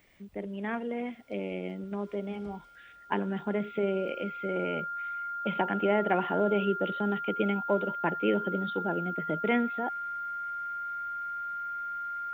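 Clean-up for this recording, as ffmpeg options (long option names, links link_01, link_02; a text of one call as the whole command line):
ffmpeg -i in.wav -af "bandreject=frequency=1400:width=30" out.wav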